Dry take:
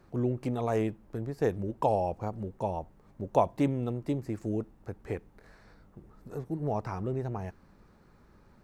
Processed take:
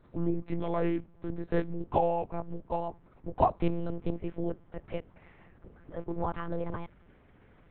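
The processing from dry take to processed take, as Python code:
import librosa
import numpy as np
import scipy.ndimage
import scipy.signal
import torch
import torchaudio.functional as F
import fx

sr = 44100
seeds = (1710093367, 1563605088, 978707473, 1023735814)

y = fx.speed_glide(x, sr, from_pct=88, to_pct=136)
y = fx.lpc_monotone(y, sr, seeds[0], pitch_hz=170.0, order=8)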